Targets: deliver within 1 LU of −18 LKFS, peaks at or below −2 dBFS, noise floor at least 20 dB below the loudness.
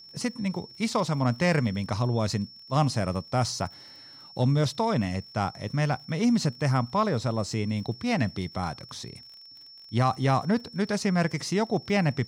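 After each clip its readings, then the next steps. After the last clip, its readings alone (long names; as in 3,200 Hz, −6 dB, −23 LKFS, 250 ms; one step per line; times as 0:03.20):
crackle rate 40 per second; interfering tone 5,400 Hz; level of the tone −46 dBFS; integrated loudness −27.5 LKFS; sample peak −13.0 dBFS; target loudness −18.0 LKFS
→ click removal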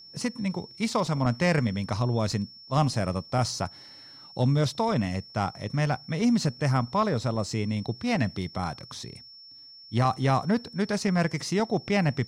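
crackle rate 0 per second; interfering tone 5,400 Hz; level of the tone −46 dBFS
→ notch filter 5,400 Hz, Q 30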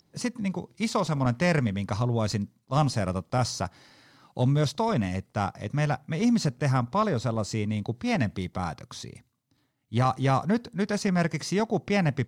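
interfering tone none found; integrated loudness −27.5 LKFS; sample peak −12.5 dBFS; target loudness −18.0 LKFS
→ level +9.5 dB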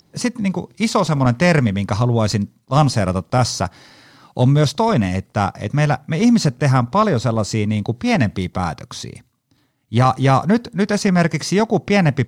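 integrated loudness −18.0 LKFS; sample peak −3.0 dBFS; background noise floor −61 dBFS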